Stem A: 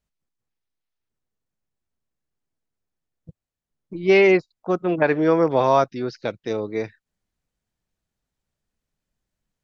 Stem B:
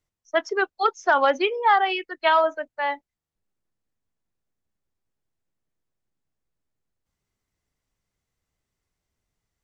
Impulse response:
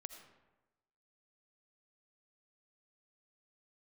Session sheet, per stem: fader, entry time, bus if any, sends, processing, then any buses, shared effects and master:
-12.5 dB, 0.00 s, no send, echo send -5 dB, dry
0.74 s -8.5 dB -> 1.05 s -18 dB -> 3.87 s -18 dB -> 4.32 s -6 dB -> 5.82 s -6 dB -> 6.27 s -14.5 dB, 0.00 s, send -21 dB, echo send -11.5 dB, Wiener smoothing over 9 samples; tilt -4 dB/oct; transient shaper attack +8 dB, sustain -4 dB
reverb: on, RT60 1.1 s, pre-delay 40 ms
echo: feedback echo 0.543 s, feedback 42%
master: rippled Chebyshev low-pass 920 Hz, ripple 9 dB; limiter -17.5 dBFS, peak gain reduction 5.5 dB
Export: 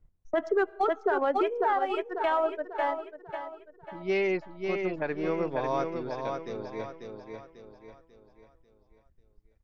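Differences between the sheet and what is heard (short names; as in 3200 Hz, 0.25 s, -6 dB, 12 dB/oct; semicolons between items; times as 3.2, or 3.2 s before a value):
stem B -8.5 dB -> +2.5 dB; master: missing rippled Chebyshev low-pass 920 Hz, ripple 9 dB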